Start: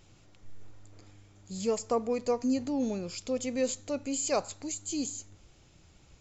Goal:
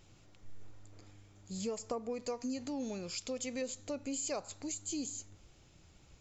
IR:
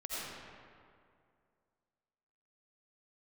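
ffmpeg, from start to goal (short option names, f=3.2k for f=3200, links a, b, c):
-filter_complex "[0:a]asettb=1/sr,asplit=3[a][b][c];[a]atrim=end=2.224[d];[b]atrim=start=2.22:end=3.62,asetpts=PTS-STARTPTS,afade=t=in:d=0.004:c=qsin,afade=t=out:st=1.396:d=0.004:c=qsin,tiltshelf=f=970:g=-3.5[e];[c]atrim=start=3.616[f];[d][e]acrossfade=d=0.004:c1=hsin:c2=qsin[g];[g][f]acrossfade=d=0.004:c1=qsin:c2=hsin,acompressor=threshold=-32dB:ratio=6,volume=-2.5dB"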